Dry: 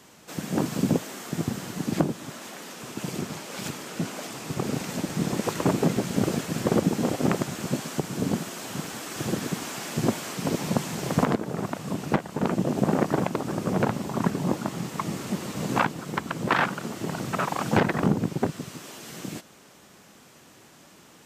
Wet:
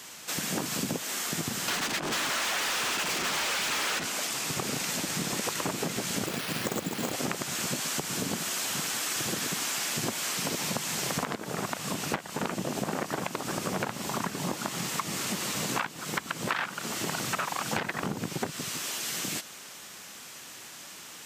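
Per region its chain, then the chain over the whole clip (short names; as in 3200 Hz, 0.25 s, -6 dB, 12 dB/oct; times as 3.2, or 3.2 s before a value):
1.68–4.04 negative-ratio compressor -38 dBFS + overdrive pedal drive 38 dB, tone 2200 Hz, clips at -21 dBFS
6.26–7.13 LPF 5800 Hz 24 dB/oct + careless resampling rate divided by 6×, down none, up hold
whole clip: tilt shelf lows -7.5 dB; compressor 6:1, threshold -32 dBFS; gain +4 dB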